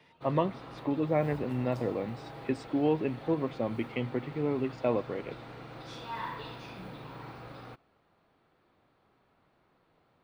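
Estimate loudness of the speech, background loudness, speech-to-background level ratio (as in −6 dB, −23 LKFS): −32.0 LKFS, −45.0 LKFS, 13.0 dB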